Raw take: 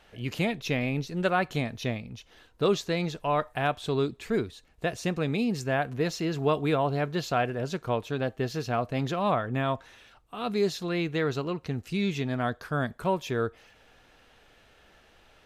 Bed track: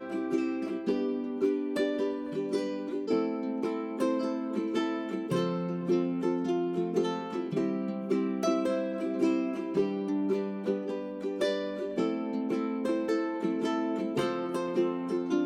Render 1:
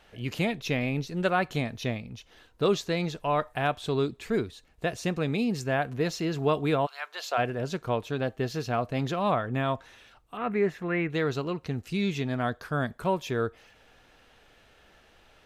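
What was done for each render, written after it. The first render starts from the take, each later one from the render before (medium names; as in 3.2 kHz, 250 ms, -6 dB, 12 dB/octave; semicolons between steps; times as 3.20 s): 6.85–7.37 s: high-pass 1.4 kHz -> 420 Hz 24 dB/octave; 10.37–11.10 s: resonant high shelf 2.9 kHz -13.5 dB, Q 3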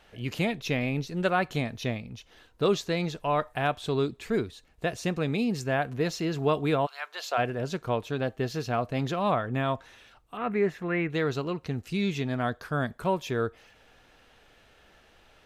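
no audible change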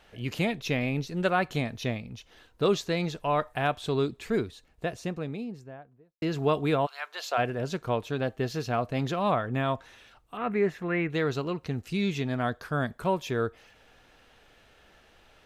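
4.34–6.22 s: studio fade out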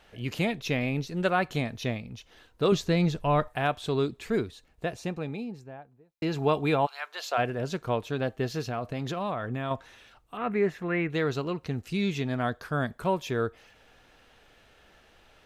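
2.72–3.48 s: bass shelf 200 Hz +12 dB; 4.93–6.98 s: small resonant body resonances 840/2400/4000 Hz, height 9 dB; 8.67–9.71 s: compression, threshold -27 dBFS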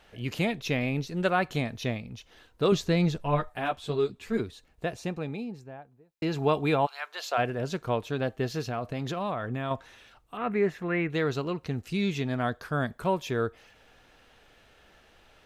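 3.18–4.40 s: three-phase chorus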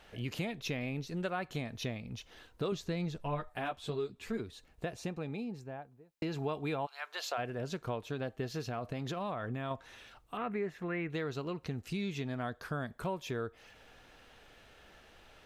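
compression 3:1, threshold -36 dBFS, peak gain reduction 13.5 dB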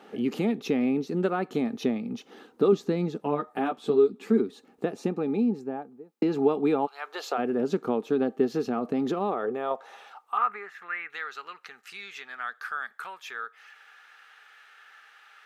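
small resonant body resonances 210/410/800/1200 Hz, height 12 dB, ringing for 25 ms; high-pass sweep 270 Hz -> 1.6 kHz, 9.08–10.77 s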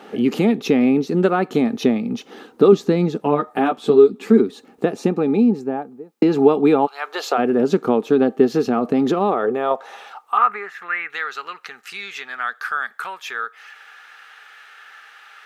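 trim +9.5 dB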